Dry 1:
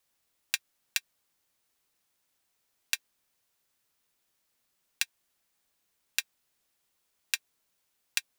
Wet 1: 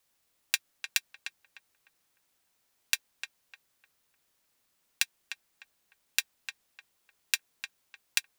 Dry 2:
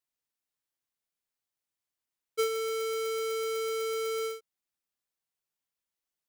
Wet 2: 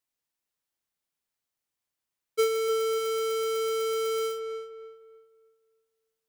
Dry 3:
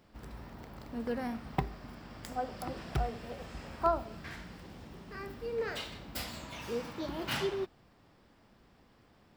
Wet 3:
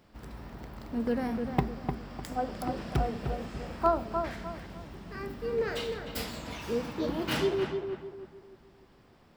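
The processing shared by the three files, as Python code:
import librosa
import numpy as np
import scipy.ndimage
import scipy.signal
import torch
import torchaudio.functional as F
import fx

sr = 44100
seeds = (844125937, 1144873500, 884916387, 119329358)

y = fx.dynamic_eq(x, sr, hz=250.0, q=0.71, threshold_db=-48.0, ratio=4.0, max_db=5)
y = fx.echo_filtered(y, sr, ms=302, feedback_pct=36, hz=1900.0, wet_db=-5.5)
y = y * librosa.db_to_amplitude(2.0)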